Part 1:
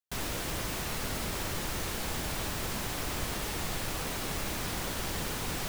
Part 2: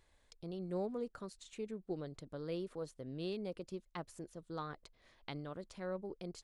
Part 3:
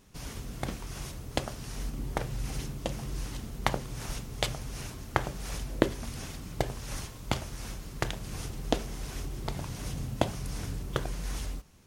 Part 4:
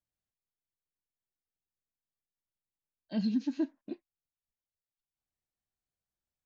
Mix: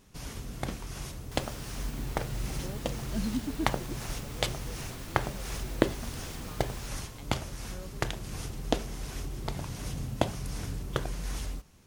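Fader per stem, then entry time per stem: -11.5, -7.0, 0.0, -2.5 dB; 1.20, 1.90, 0.00, 0.00 s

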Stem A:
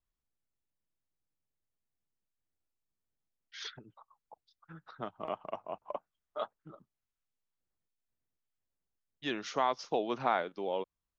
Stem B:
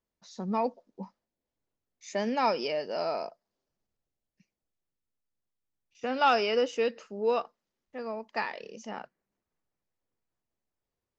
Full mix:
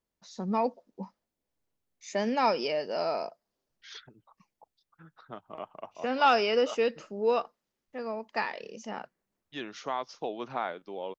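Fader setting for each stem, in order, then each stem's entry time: -3.0, +1.0 dB; 0.30, 0.00 s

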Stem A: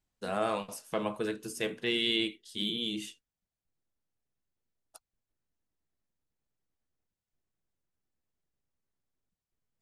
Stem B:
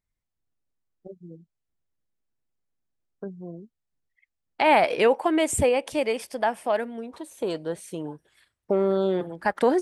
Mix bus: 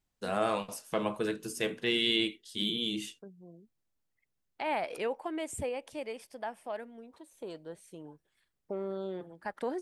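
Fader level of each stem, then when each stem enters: +1.0, -14.0 dB; 0.00, 0.00 s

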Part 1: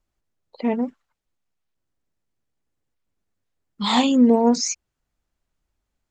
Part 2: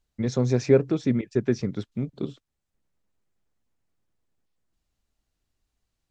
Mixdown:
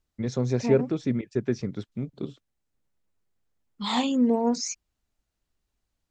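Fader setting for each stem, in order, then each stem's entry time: -7.0, -3.0 dB; 0.00, 0.00 s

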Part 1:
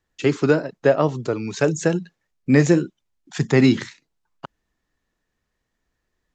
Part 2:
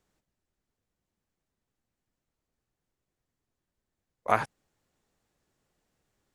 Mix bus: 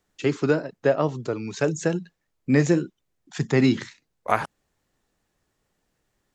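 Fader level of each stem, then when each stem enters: -4.0, +2.5 dB; 0.00, 0.00 s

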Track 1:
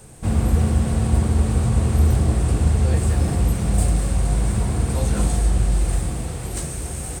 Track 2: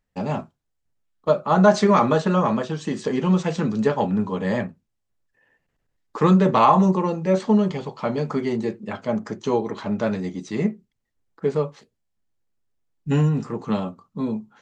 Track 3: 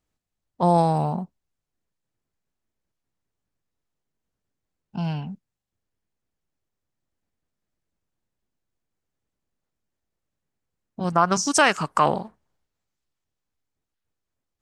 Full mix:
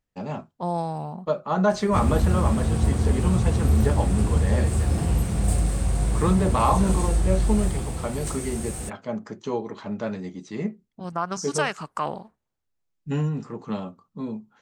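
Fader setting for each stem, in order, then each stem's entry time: -3.5, -6.0, -8.5 dB; 1.70, 0.00, 0.00 s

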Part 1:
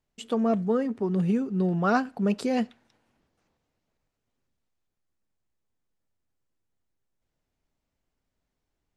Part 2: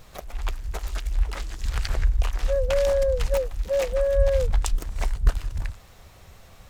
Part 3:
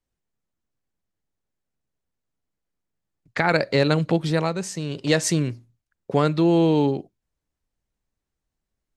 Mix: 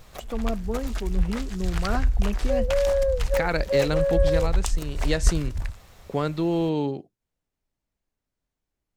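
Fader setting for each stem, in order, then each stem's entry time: -5.5, -0.5, -6.0 dB; 0.00, 0.00, 0.00 s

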